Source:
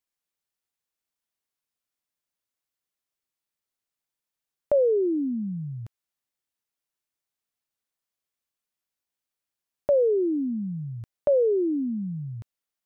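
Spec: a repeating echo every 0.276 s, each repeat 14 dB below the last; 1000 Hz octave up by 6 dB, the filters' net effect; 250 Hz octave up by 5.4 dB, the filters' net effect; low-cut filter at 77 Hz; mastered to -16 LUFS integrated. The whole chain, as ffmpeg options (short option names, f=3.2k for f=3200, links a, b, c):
-af "highpass=77,equalizer=f=250:t=o:g=6.5,equalizer=f=1k:t=o:g=8.5,aecho=1:1:276|552:0.2|0.0399,volume=5.5dB"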